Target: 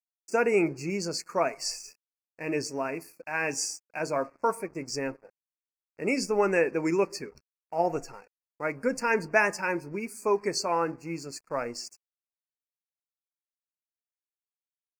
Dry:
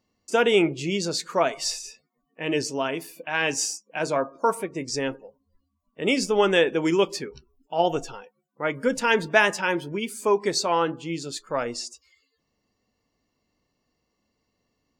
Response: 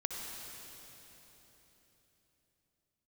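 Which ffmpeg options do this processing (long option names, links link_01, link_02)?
-af "aeval=exprs='sgn(val(0))*max(abs(val(0))-0.00355,0)':channel_layout=same,asuperstop=centerf=3400:order=12:qfactor=2,volume=-4dB"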